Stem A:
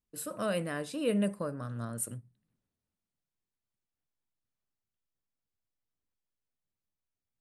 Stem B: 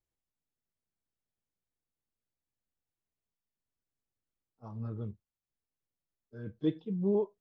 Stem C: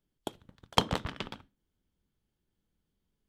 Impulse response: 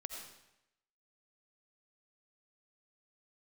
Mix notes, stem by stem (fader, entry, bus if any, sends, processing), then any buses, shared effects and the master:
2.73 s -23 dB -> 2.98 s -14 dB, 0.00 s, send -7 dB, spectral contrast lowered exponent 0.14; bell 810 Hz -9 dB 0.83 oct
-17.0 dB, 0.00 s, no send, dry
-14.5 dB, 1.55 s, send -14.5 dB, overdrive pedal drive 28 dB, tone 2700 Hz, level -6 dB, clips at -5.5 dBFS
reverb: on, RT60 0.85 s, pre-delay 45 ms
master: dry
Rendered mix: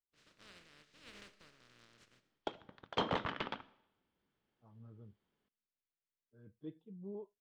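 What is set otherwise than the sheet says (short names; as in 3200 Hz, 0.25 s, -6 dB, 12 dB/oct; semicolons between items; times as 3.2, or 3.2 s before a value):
stem C: entry 1.55 s -> 2.20 s; master: extra air absorption 160 m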